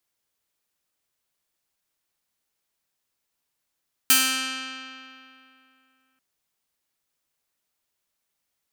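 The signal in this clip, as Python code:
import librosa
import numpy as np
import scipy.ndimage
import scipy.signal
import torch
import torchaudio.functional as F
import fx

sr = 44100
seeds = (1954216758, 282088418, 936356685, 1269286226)

y = fx.pluck(sr, length_s=2.09, note=60, decay_s=2.75, pick=0.47, brightness='bright')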